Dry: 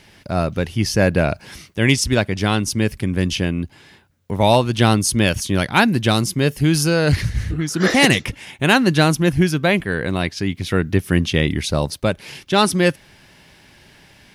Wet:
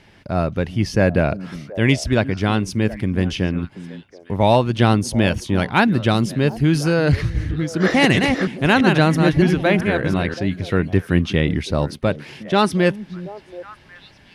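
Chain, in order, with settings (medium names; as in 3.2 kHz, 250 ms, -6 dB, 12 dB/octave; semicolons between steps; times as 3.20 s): 7.81–10.34 s: chunks repeated in reverse 333 ms, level -4.5 dB; low-pass 2.4 kHz 6 dB/octave; repeats whose band climbs or falls 364 ms, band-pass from 210 Hz, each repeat 1.4 oct, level -11 dB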